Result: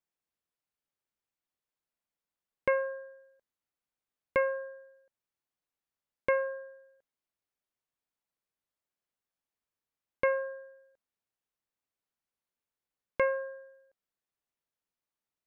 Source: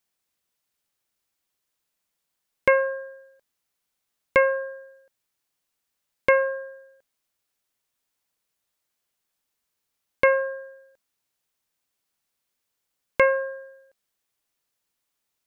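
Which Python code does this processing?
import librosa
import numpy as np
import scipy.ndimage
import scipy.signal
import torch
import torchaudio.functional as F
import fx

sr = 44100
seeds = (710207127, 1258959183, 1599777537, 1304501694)

y = fx.high_shelf(x, sr, hz=2800.0, db=-10.5)
y = F.gain(torch.from_numpy(y), -8.0).numpy()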